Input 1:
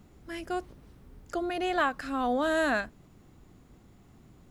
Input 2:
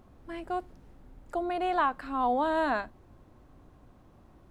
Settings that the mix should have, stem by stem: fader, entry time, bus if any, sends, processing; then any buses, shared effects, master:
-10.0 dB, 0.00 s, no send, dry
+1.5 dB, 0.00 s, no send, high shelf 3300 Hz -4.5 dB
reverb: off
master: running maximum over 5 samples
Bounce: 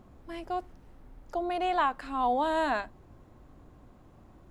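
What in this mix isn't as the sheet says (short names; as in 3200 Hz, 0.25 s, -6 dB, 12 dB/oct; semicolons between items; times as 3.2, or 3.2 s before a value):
stem 2: polarity flipped; master: missing running maximum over 5 samples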